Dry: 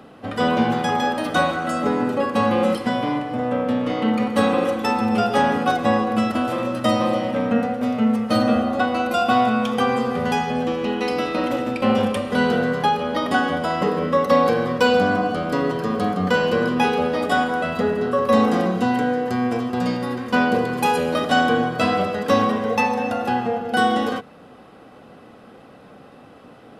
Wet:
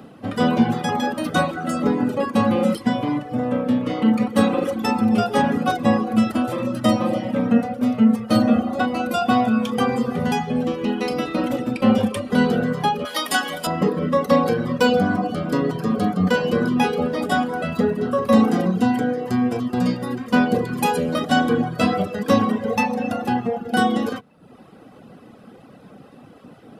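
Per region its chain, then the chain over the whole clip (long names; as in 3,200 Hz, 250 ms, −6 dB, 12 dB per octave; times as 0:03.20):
0:13.05–0:13.67: spectral tilt +4.5 dB per octave + mains-hum notches 50/100/150/200/250/300/350/400/450/500 Hz
whole clip: high-shelf EQ 6,400 Hz +7 dB; reverb reduction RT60 0.75 s; parametric band 170 Hz +8 dB 2.1 octaves; level −2 dB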